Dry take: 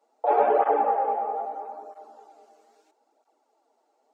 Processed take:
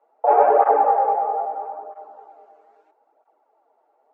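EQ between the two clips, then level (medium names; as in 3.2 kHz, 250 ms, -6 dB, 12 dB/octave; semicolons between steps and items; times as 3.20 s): three-band isolator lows -16 dB, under 410 Hz, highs -16 dB, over 2.5 kHz; treble shelf 2.5 kHz -11 dB; +8.0 dB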